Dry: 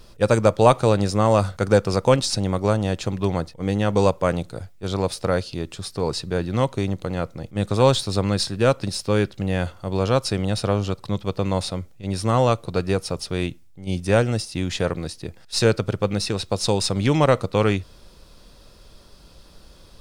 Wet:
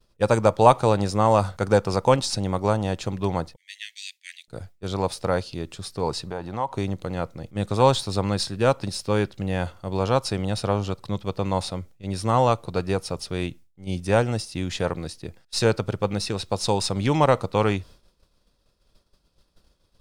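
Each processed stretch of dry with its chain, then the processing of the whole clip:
0:03.56–0:04.48: Butterworth high-pass 1,800 Hz 96 dB per octave + dynamic equaliser 4,000 Hz, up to +4 dB, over −50 dBFS, Q 2.1
0:06.25–0:06.77: parametric band 850 Hz +14.5 dB 1.1 octaves + downward compressor 2.5 to 1, threshold −28 dBFS
whole clip: downward expander −36 dBFS; dynamic equaliser 880 Hz, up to +7 dB, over −36 dBFS, Q 2.3; level −3 dB

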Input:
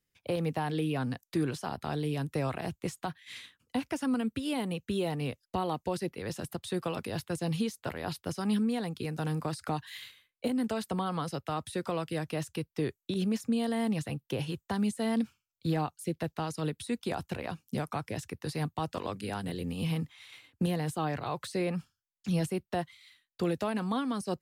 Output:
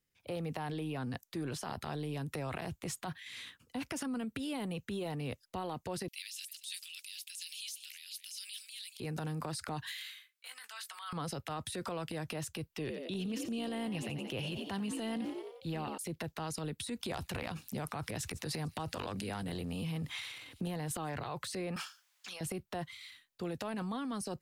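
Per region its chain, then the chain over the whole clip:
0:06.08–0:09.00: Butterworth high-pass 2,500 Hz + high-shelf EQ 3,800 Hz +5 dB + repeating echo 226 ms, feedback 42%, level −20 dB
0:09.92–0:11.13: high-pass filter 1,300 Hz 24 dB per octave + double-tracking delay 18 ms −13 dB
0:12.72–0:15.98: parametric band 2,800 Hz +8.5 dB 0.4 octaves + echo with shifted repeats 89 ms, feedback 46%, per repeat +61 Hz, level −12.5 dB
0:16.97–0:21.15: transient designer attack +3 dB, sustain +9 dB + delay with a high-pass on its return 147 ms, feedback 82%, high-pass 5,200 Hz, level −21 dB
0:21.76–0:22.41: high-pass filter 860 Hz + compressor whose output falls as the input rises −54 dBFS + mid-hump overdrive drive 18 dB, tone 4,800 Hz, clips at −26.5 dBFS
whole clip: transient designer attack −7 dB, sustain +8 dB; downward compressor, threshold −34 dBFS; level −1 dB

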